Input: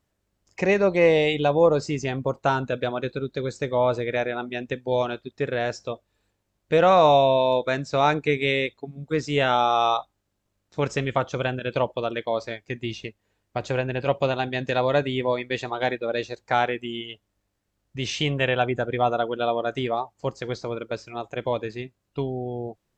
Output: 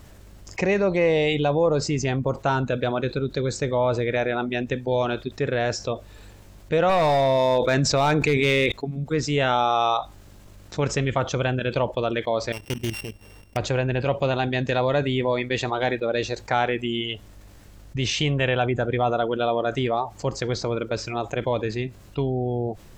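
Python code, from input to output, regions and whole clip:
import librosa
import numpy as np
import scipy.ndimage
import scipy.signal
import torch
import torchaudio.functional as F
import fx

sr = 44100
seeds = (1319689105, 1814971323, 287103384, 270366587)

y = fx.chain(x, sr, fx.overload_stage(gain_db=14.0),
    fx.env_flatten(amount_pct=70), at=(6.89, 8.72))
y = fx.chain(y, sr, fx.sample_sort(block=16),
    fx.level_steps(step_db=15),
    fx.doppler_dist(depth_ms=0.2), at=(12.52, 13.57))
y = fx.low_shelf(y, sr, hz=95.0, db=9.5)
y = fx.env_flatten(y, sr, amount_pct=50)
y = F.gain(torch.from_numpy(y), -4.0).numpy()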